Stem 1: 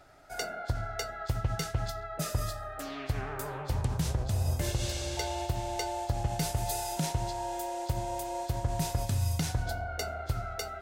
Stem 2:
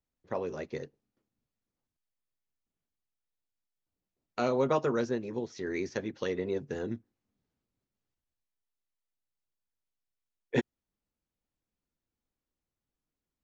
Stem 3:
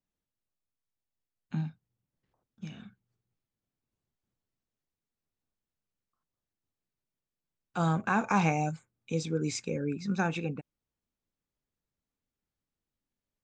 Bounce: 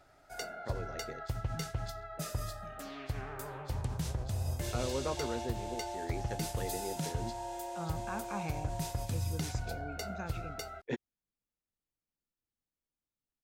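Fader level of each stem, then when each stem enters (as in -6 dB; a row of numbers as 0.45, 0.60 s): -5.5, -8.5, -13.5 dB; 0.00, 0.35, 0.00 s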